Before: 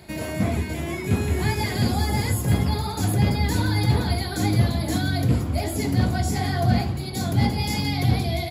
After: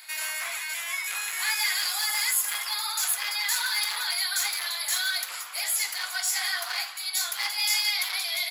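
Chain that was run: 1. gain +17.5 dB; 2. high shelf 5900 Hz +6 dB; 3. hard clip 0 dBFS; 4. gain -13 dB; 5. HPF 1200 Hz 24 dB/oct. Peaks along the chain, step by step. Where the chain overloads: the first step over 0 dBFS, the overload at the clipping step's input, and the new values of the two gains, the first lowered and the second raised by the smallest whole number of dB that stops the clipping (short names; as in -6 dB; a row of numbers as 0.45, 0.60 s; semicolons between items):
+9.0, +9.0, 0.0, -13.0, -12.5 dBFS; step 1, 9.0 dB; step 1 +8.5 dB, step 4 -4 dB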